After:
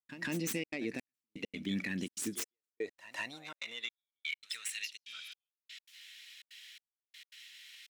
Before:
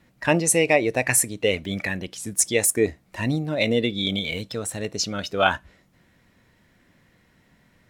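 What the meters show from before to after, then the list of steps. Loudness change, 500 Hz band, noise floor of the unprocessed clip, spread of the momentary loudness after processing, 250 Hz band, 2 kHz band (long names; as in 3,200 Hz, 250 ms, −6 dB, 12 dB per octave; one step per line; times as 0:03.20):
−17.0 dB, −22.5 dB, −62 dBFS, 17 LU, −14.0 dB, −15.0 dB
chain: stylus tracing distortion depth 0.13 ms
reversed playback
upward compression, threshold −31 dBFS
reversed playback
high-shelf EQ 8,300 Hz −6.5 dB
downward compressor 6 to 1, threshold −26 dBFS, peak gain reduction 13 dB
high-pass filter sweep 250 Hz → 3,000 Hz, 0:02.00–0:05.01
guitar amp tone stack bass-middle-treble 6-0-2
on a send: backwards echo 153 ms −15 dB
on the sum: brickwall limiter −40 dBFS, peak gain reduction 10 dB
healed spectral selection 0:05.09–0:05.30, 1,600–9,400 Hz after
gate pattern ".xxxxxx.xxx....x" 166 BPM −60 dB
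level +14.5 dB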